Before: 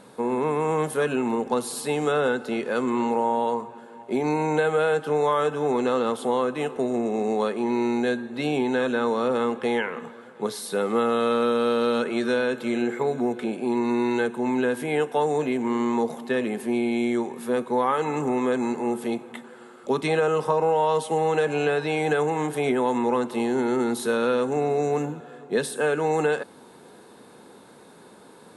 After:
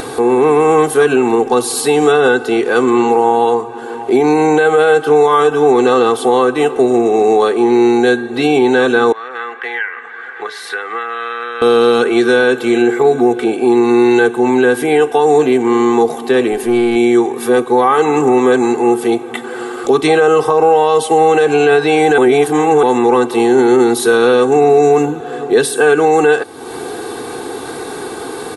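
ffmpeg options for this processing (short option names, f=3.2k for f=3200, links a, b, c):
-filter_complex "[0:a]asettb=1/sr,asplit=3[a][b][c];[a]atrim=end=9.124[d];[b]atrim=start=9.12:end=11.62,asetpts=PTS-STARTPTS,afade=t=in:d=0.004:c=qsin,afade=t=out:st=2.496:d=0.004:c=qsin,bandpass=f=1.8k:t=q:w=4.3[e];[c]atrim=start=11.616[f];[d][e]acrossfade=d=0.004:c1=hsin:c2=qsin[g];[g][f]acrossfade=d=0.004:c1=qsin:c2=hsin,asettb=1/sr,asplit=3[h][i][j];[h]atrim=end=16.524[k];[i]atrim=start=16.52:end=16.96,asetpts=PTS-STARTPTS,afade=t=in:d=0.004:c=qsin,afade=t=out:st=0.436:d=0.004:c=qsin,aeval=exprs='(tanh(8.91*val(0)+0.15)-tanh(0.15))/8.91':c=same[l];[j]atrim=start=16.956[m];[k][l]acrossfade=d=0.004:c1=hsin:c2=qsin[n];[n][m]acrossfade=d=0.004:c1=qsin:c2=hsin,asplit=3[o][p][q];[o]atrim=end=22.182[r];[p]atrim=start=22.178:end=22.832,asetpts=PTS-STARTPTS,areverse[s];[q]atrim=start=22.828[t];[r][s]acrossfade=d=0.004:c1=hsin:c2=hsin[u];[u][t]acrossfade=d=0.004:c1=hsin:c2=hsin,acompressor=mode=upward:threshold=-27dB:ratio=2.5,aecho=1:1:2.6:0.78,alimiter=level_in=12.5dB:limit=-1dB:release=50:level=0:latency=1,volume=-1dB"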